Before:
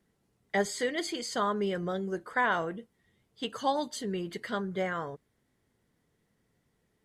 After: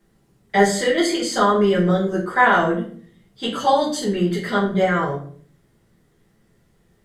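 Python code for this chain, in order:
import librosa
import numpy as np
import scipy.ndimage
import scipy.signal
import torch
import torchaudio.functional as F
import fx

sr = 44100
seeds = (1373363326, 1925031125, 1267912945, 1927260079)

y = fx.room_shoebox(x, sr, seeds[0], volume_m3=51.0, walls='mixed', distance_m=1.2)
y = F.gain(torch.from_numpy(y), 5.5).numpy()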